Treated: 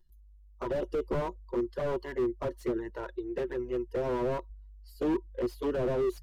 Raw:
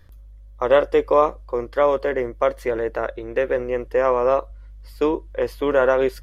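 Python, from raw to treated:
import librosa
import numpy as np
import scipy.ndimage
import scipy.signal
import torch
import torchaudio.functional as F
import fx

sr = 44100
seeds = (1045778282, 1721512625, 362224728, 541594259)

y = fx.bin_expand(x, sr, power=1.5)
y = fx.high_shelf(y, sr, hz=3100.0, db=7.5)
y = fx.notch(y, sr, hz=2300.0, q=5.1)
y = fx.small_body(y, sr, hz=(360.0, 960.0, 2900.0), ring_ms=70, db=15)
y = fx.env_flanger(y, sr, rest_ms=5.7, full_db=-13.5)
y = fx.slew_limit(y, sr, full_power_hz=40.0)
y = F.gain(torch.from_numpy(y), -6.0).numpy()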